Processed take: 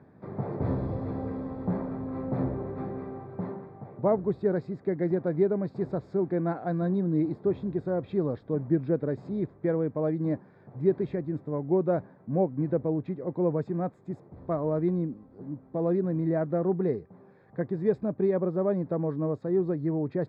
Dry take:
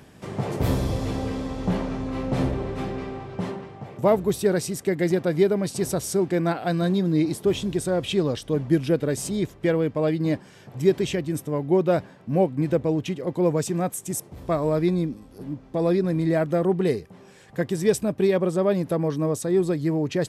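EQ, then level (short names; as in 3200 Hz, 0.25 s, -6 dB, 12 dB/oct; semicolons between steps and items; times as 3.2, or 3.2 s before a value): running mean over 15 samples; HPF 88 Hz; air absorption 240 m; -4.0 dB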